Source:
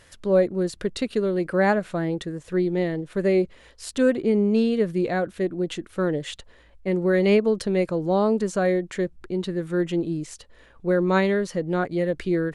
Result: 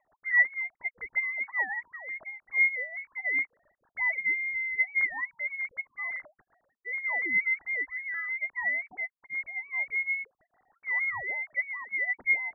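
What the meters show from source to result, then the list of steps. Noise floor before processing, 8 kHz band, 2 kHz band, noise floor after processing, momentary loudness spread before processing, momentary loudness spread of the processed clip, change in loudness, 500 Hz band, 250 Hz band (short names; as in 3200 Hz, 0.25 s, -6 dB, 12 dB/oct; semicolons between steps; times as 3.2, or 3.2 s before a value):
-53 dBFS, under -40 dB, +7.5 dB, -84 dBFS, 9 LU, 11 LU, -5.0 dB, -30.5 dB, -34.0 dB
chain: sine-wave speech; rotary speaker horn 6.7 Hz; inverted band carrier 2500 Hz; gain -6.5 dB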